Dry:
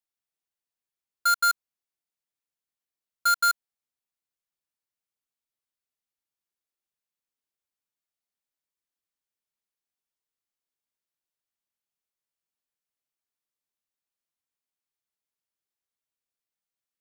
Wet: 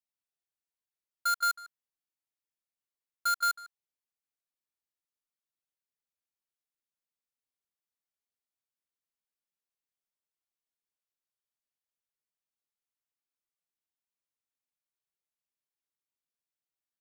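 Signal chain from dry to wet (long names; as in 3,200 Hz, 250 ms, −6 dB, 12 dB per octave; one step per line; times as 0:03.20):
far-end echo of a speakerphone 150 ms, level −10 dB
level −6.5 dB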